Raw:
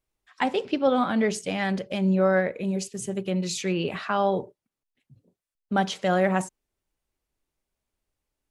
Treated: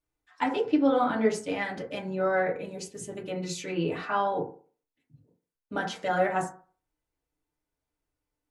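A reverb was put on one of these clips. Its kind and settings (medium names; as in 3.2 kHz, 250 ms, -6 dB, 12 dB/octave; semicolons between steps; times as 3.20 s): FDN reverb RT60 0.42 s, low-frequency decay 0.85×, high-frequency decay 0.3×, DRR -4 dB; trim -7.5 dB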